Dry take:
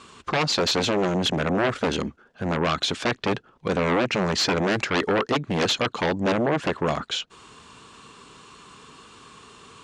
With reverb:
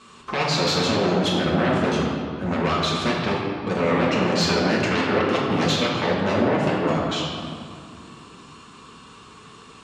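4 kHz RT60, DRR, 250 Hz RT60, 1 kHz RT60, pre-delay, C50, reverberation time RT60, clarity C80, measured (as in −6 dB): 1.3 s, −5.5 dB, 3.6 s, 2.4 s, 5 ms, 0.0 dB, 2.4 s, 1.5 dB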